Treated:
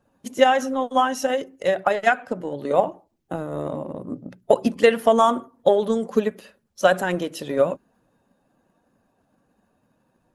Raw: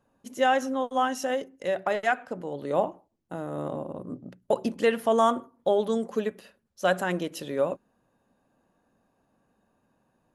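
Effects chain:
spectral magnitudes quantised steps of 15 dB
transient designer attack +6 dB, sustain +2 dB
level +3.5 dB

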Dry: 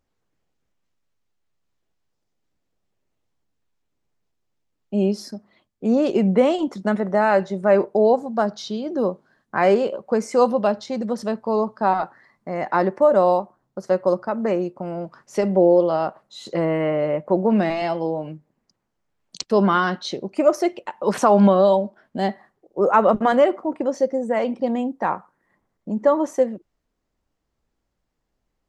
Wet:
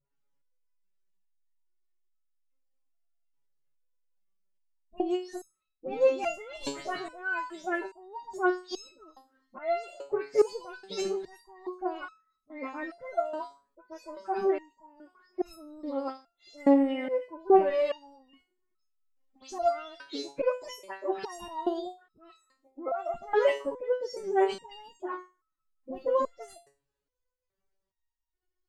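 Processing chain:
every frequency bin delayed by itself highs late, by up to 172 ms
phase-vocoder pitch shift with formants kept +9.5 semitones
step-sequenced resonator 2.4 Hz 140–1,300 Hz
level +5 dB

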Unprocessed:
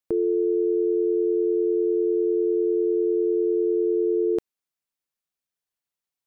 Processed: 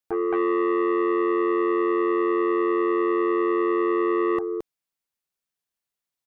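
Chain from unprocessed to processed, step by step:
single-tap delay 220 ms −5 dB
saturating transformer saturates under 750 Hz

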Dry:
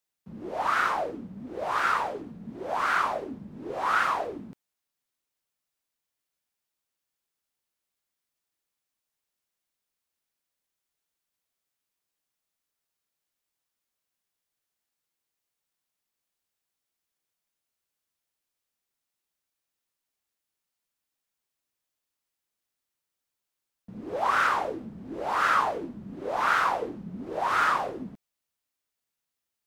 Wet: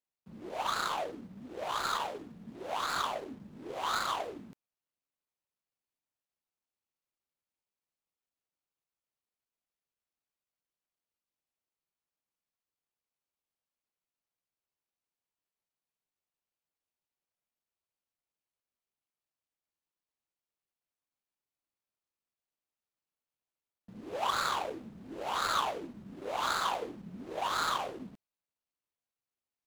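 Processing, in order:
running median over 25 samples
tilt shelving filter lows −5 dB, about 1,200 Hz
level −2.5 dB

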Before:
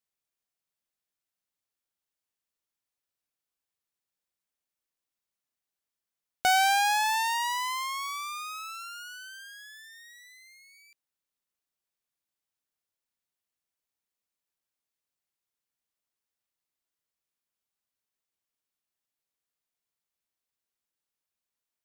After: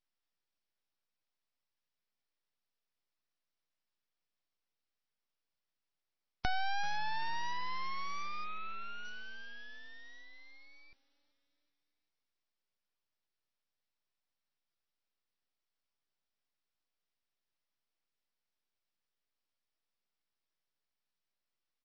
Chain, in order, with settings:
high-pass filter 400 Hz 6 dB per octave
downward compressor 2.5 to 1, threshold −35 dBFS, peak gain reduction 10.5 dB
echo with shifted repeats 385 ms, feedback 57%, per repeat −82 Hz, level −24 dB
full-wave rectification
0:08.44–0:09.05: Butterworth band-reject 5,100 Hz, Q 2.4
level +2.5 dB
MP3 24 kbit/s 22,050 Hz

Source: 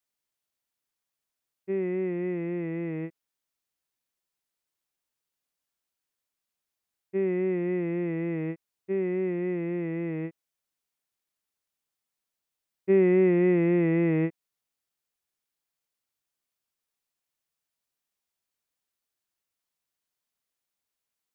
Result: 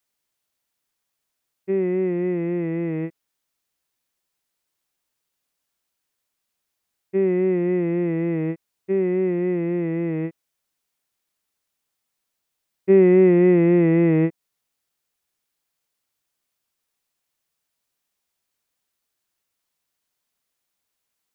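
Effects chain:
dynamic equaliser 2,400 Hz, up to −4 dB, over −46 dBFS, Q 0.88
level +7 dB

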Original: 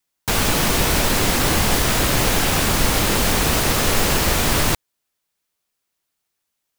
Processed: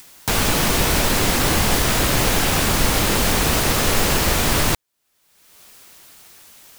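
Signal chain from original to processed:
upward compression, threshold −21 dBFS

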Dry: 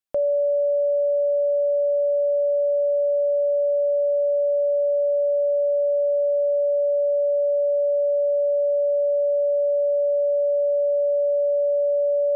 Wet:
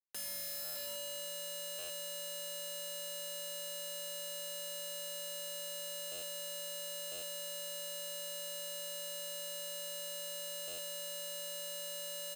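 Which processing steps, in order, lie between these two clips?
running median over 41 samples
high-pass filter 420 Hz 12 dB per octave
comb filter 5.1 ms, depth 94%
brickwall limiter −21 dBFS, peak gain reduction 7 dB
harmonic generator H 7 −14 dB, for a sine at −21 dBFS
speech leveller 2 s
wrap-around overflow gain 31.5 dB
buffer that repeats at 0:00.64/0:01.78/0:06.11/0:07.11/0:10.67, samples 512, times 9
level −5.5 dB

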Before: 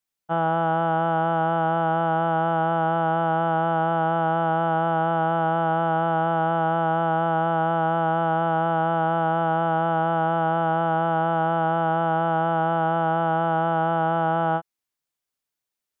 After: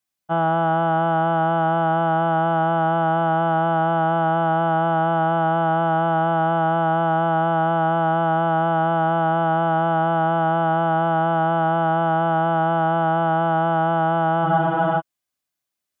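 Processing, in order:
notch comb filter 460 Hz
frozen spectrum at 0:14.47, 0.53 s
level +3.5 dB

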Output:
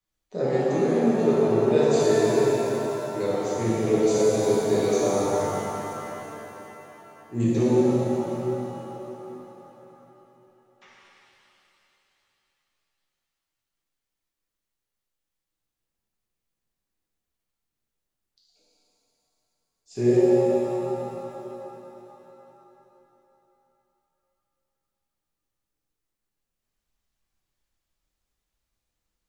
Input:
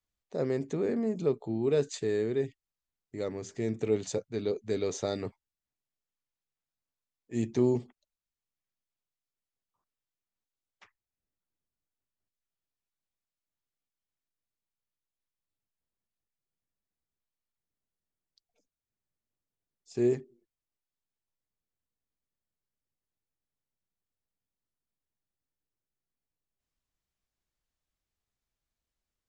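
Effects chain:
0:04.96–0:07.40: high shelf with overshoot 1,600 Hz −13 dB, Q 1.5
reverb reduction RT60 1.6 s
reverb with rising layers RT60 3.6 s, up +7 semitones, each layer −8 dB, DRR −10 dB

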